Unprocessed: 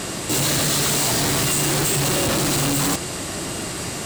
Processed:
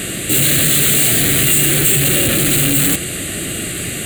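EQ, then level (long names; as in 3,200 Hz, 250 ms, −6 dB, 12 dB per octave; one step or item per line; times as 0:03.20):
high-shelf EQ 3,200 Hz +8 dB
phaser with its sweep stopped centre 2,300 Hz, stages 4
+5.5 dB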